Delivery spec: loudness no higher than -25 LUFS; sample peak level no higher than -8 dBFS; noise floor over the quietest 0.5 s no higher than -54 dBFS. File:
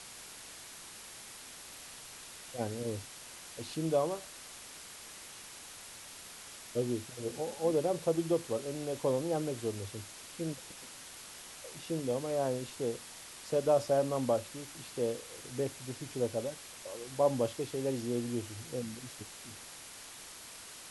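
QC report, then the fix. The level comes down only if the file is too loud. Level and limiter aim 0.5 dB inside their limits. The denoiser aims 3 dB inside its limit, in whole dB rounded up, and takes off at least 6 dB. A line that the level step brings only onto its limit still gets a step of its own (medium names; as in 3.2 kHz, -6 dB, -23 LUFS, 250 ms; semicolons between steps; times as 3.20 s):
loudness -36.5 LUFS: pass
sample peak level -16.5 dBFS: pass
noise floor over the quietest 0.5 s -49 dBFS: fail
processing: noise reduction 8 dB, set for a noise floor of -49 dBFS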